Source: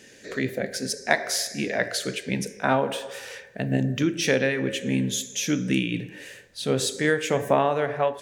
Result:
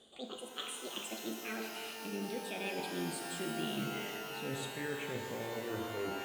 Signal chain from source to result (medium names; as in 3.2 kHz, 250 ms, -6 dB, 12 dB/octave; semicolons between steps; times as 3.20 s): gliding tape speed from 197% -> 66%; steep low-pass 8.8 kHz; reverse; compression, threshold -30 dBFS, peak gain reduction 14.5 dB; reverse; static phaser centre 2.3 kHz, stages 4; feedback comb 220 Hz, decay 0.72 s, harmonics odd, mix 70%; pitch-shifted reverb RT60 3.1 s, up +12 st, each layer -2 dB, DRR 5 dB; trim +4.5 dB